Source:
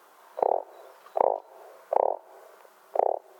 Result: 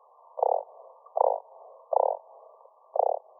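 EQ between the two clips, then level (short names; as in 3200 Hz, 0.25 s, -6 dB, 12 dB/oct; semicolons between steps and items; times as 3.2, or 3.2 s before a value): steep high-pass 460 Hz 72 dB/oct; brick-wall FIR low-pass 1200 Hz; 0.0 dB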